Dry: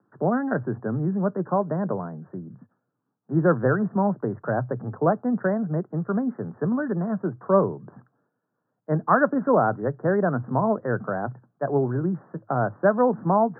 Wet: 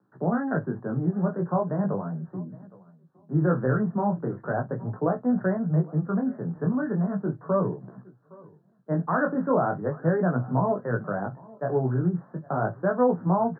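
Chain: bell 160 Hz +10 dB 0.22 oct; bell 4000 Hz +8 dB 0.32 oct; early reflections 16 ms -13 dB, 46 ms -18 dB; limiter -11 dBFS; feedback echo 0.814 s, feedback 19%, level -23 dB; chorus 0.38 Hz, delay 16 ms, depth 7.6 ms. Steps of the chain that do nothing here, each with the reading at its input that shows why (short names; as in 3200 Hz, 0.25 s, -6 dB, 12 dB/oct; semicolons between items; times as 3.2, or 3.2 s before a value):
bell 4000 Hz: input band ends at 1600 Hz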